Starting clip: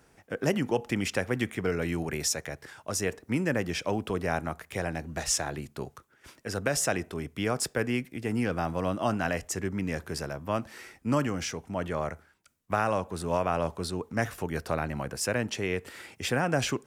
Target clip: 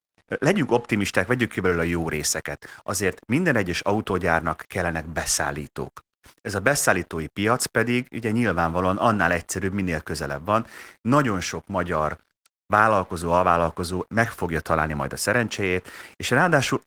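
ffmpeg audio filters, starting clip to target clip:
-af "adynamicequalizer=threshold=0.00501:dfrequency=1300:dqfactor=1.5:tfrequency=1300:tqfactor=1.5:attack=5:release=100:ratio=0.375:range=3.5:mode=boostabove:tftype=bell,aeval=exprs='sgn(val(0))*max(abs(val(0))-0.00224,0)':c=same,aeval=exprs='0.335*(cos(1*acos(clip(val(0)/0.335,-1,1)))-cos(1*PI/2))+0.0168*(cos(2*acos(clip(val(0)/0.335,-1,1)))-cos(2*PI/2))+0.00376*(cos(3*acos(clip(val(0)/0.335,-1,1)))-cos(3*PI/2))':c=same,volume=2.24" -ar 48000 -c:a libopus -b:a 20k

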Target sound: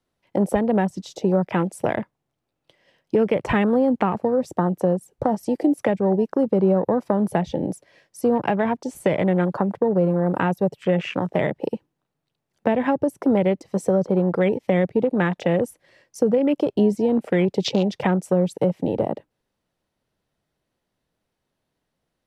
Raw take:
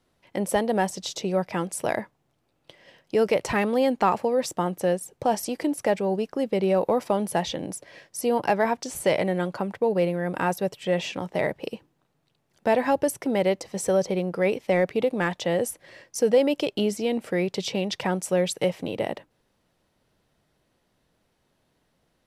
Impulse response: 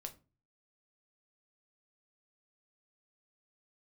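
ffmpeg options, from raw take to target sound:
-filter_complex "[0:a]afwtdn=0.0224,acrossover=split=280[s0][s1];[s1]acompressor=threshold=0.0398:ratio=10[s2];[s0][s2]amix=inputs=2:normalize=0,volume=2.66"

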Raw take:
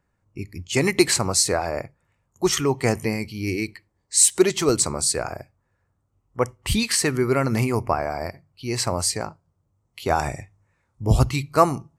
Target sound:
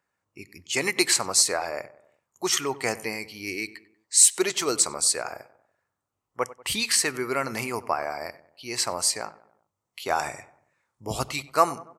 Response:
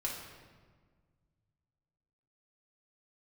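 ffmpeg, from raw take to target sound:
-filter_complex "[0:a]highpass=f=880:p=1,asplit=2[s0][s1];[s1]adelay=95,lowpass=f=1800:p=1,volume=0.141,asplit=2[s2][s3];[s3]adelay=95,lowpass=f=1800:p=1,volume=0.51,asplit=2[s4][s5];[s5]adelay=95,lowpass=f=1800:p=1,volume=0.51,asplit=2[s6][s7];[s7]adelay=95,lowpass=f=1800:p=1,volume=0.51[s8];[s2][s4][s6][s8]amix=inputs=4:normalize=0[s9];[s0][s9]amix=inputs=2:normalize=0"

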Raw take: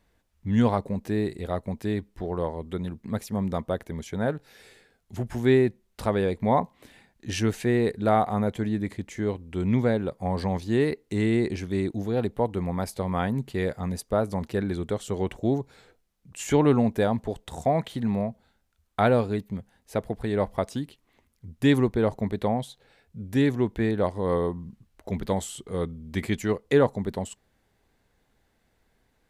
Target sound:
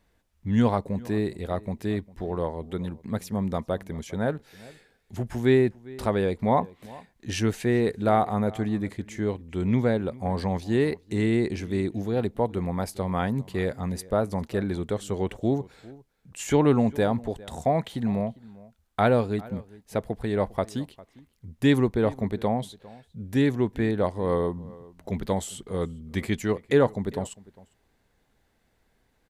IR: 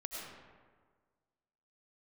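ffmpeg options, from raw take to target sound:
-filter_complex "[0:a]asplit=2[s0][s1];[s1]adelay=402.3,volume=0.0891,highshelf=f=4000:g=-9.05[s2];[s0][s2]amix=inputs=2:normalize=0"

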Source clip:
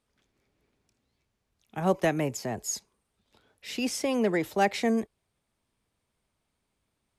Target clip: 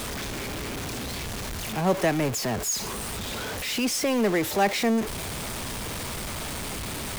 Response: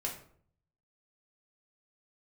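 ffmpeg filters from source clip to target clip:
-af "aeval=exprs='val(0)+0.5*0.0473*sgn(val(0))':c=same"

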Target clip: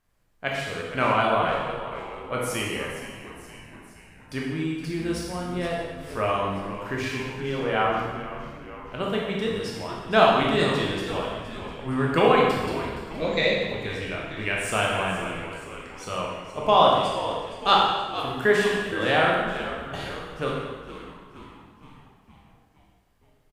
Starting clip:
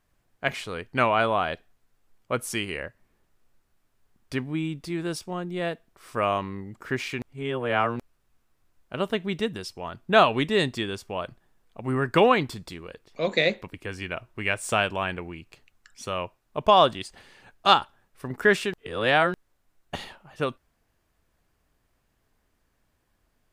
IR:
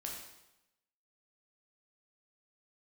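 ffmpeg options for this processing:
-filter_complex "[0:a]asplit=8[s0][s1][s2][s3][s4][s5][s6][s7];[s1]adelay=468,afreqshift=-92,volume=0.237[s8];[s2]adelay=936,afreqshift=-184,volume=0.14[s9];[s3]adelay=1404,afreqshift=-276,volume=0.0822[s10];[s4]adelay=1872,afreqshift=-368,volume=0.049[s11];[s5]adelay=2340,afreqshift=-460,volume=0.0288[s12];[s6]adelay=2808,afreqshift=-552,volume=0.017[s13];[s7]adelay=3276,afreqshift=-644,volume=0.01[s14];[s0][s8][s9][s10][s11][s12][s13][s14]amix=inputs=8:normalize=0[s15];[1:a]atrim=start_sample=2205,asetrate=31752,aresample=44100[s16];[s15][s16]afir=irnorm=-1:irlink=0"

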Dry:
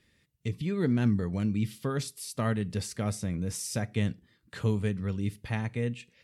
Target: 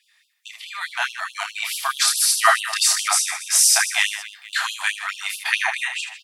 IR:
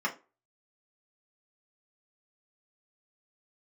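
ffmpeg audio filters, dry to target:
-af "aecho=1:1:30|78|154.8|277.7|474.3:0.631|0.398|0.251|0.158|0.1,dynaudnorm=f=250:g=7:m=5.62,afftfilt=real='re*gte(b*sr/1024,640*pow(2700/640,0.5+0.5*sin(2*PI*4.7*pts/sr)))':imag='im*gte(b*sr/1024,640*pow(2700/640,0.5+0.5*sin(2*PI*4.7*pts/sr)))':win_size=1024:overlap=0.75,volume=2.51"

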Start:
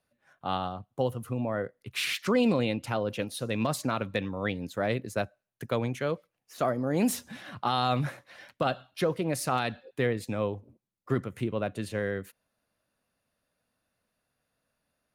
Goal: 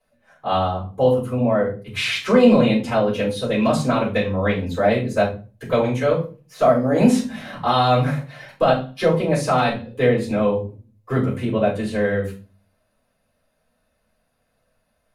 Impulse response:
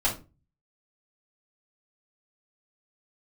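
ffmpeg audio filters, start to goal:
-filter_complex "[0:a]acrossover=split=8900[s0][s1];[s1]acompressor=threshold=0.00112:ratio=4:attack=1:release=60[s2];[s0][s2]amix=inputs=2:normalize=0[s3];[1:a]atrim=start_sample=2205,asetrate=35280,aresample=44100[s4];[s3][s4]afir=irnorm=-1:irlink=0,volume=0.75"

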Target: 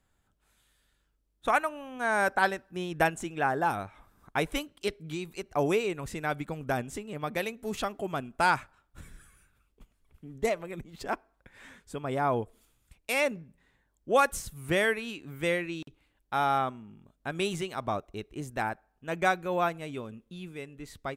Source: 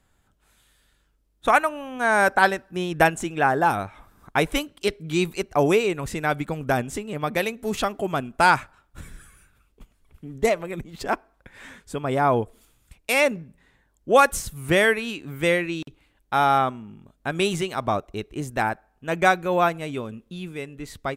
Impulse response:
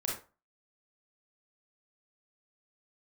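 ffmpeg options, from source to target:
-filter_complex "[0:a]asettb=1/sr,asplit=3[s0][s1][s2];[s0]atrim=end=5.044[s3];[s1]atrim=start=5.04:end=5.46,asetpts=PTS-STARTPTS,afade=t=in:d=0.004:c=qsin,afade=t=out:st=0.416:d=0.004:c=qsin,acompressor=threshold=0.0562:ratio=5[s4];[s2]atrim=start=5.456[s5];[s3][s4]acrossfade=d=0.004:c1=hsin:c2=qsin[s6];[s6][s5]acrossfade=d=0.004:c1=qsin:c2=hsin,volume=0.422"

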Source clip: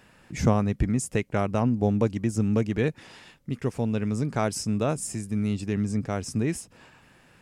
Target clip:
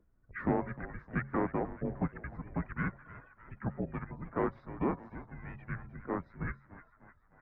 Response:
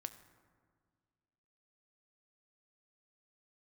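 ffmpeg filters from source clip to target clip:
-filter_complex "[0:a]afftdn=nr=31:nf=-43,highpass=f=240:p=1,bandreject=f=415.8:t=h:w=4,bandreject=f=831.6:t=h:w=4,bandreject=f=1247.4:t=h:w=4,bandreject=f=1663.2:t=h:w=4,adynamicequalizer=threshold=0.0126:dfrequency=590:dqfactor=0.71:tfrequency=590:tqfactor=0.71:attack=5:release=100:ratio=0.375:range=3.5:mode=cutabove:tftype=bell,acrossover=split=460[s0][s1];[s0]acompressor=mode=upward:threshold=0.02:ratio=2.5[s2];[s1]asoftclip=type=hard:threshold=0.0531[s3];[s2][s3]amix=inputs=2:normalize=0,asplit=3[s4][s5][s6];[s5]asetrate=35002,aresample=44100,atempo=1.25992,volume=0.501[s7];[s6]asetrate=52444,aresample=44100,atempo=0.840896,volume=0.251[s8];[s4][s7][s8]amix=inputs=3:normalize=0,aeval=exprs='val(0)+0.00794*(sin(2*PI*60*n/s)+sin(2*PI*2*60*n/s)/2+sin(2*PI*3*60*n/s)/3+sin(2*PI*4*60*n/s)/4+sin(2*PI*5*60*n/s)/5)':c=same,asplit=2[s9][s10];[s10]asplit=6[s11][s12][s13][s14][s15][s16];[s11]adelay=305,afreqshift=-69,volume=0.168[s17];[s12]adelay=610,afreqshift=-138,volume=0.104[s18];[s13]adelay=915,afreqshift=-207,volume=0.0646[s19];[s14]adelay=1220,afreqshift=-276,volume=0.0398[s20];[s15]adelay=1525,afreqshift=-345,volume=0.0248[s21];[s16]adelay=1830,afreqshift=-414,volume=0.0153[s22];[s17][s18][s19][s20][s21][s22]amix=inputs=6:normalize=0[s23];[s9][s23]amix=inputs=2:normalize=0,highpass=f=420:t=q:w=0.5412,highpass=f=420:t=q:w=1.307,lowpass=f=2200:t=q:w=0.5176,lowpass=f=2200:t=q:w=0.7071,lowpass=f=2200:t=q:w=1.932,afreqshift=-280"

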